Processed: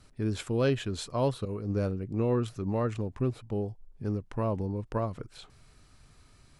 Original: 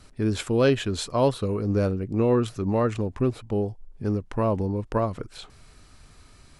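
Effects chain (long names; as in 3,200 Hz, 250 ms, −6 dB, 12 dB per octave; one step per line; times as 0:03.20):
0:01.45–0:01.85: downward expander −23 dBFS
parametric band 130 Hz +4 dB 0.77 octaves
level −7 dB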